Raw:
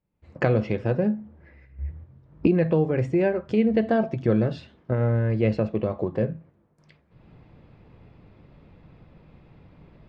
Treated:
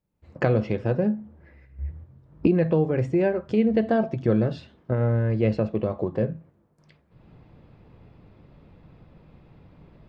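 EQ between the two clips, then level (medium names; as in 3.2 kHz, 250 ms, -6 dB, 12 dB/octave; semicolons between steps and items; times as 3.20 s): peaking EQ 2.2 kHz -2.5 dB 0.77 oct; 0.0 dB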